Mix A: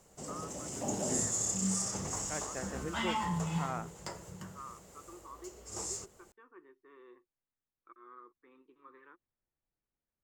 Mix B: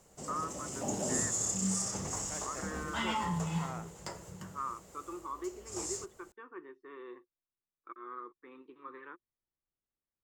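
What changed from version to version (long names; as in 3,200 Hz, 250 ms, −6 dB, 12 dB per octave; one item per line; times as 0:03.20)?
first voice +9.0 dB
second voice −5.5 dB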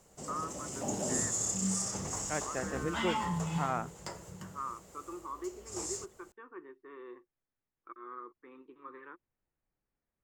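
first voice: add high-frequency loss of the air 190 metres
second voice +10.5 dB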